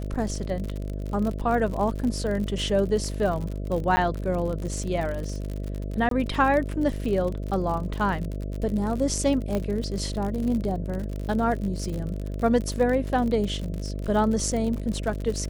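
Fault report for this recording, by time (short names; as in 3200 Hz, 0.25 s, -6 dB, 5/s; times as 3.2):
buzz 50 Hz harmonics 13 -31 dBFS
crackle 67/s -30 dBFS
3.96–3.97 gap 10 ms
6.09–6.11 gap 22 ms
9.55 pop -15 dBFS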